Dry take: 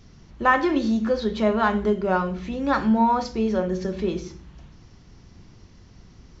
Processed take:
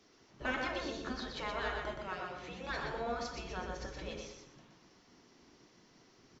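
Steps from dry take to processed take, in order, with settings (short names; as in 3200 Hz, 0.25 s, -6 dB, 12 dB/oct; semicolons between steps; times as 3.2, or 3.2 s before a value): 1.98–2.7 HPF 110 Hz 12 dB/oct; spectral gate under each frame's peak -10 dB weak; feedback echo 0.122 s, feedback 31%, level -4.5 dB; gain -7 dB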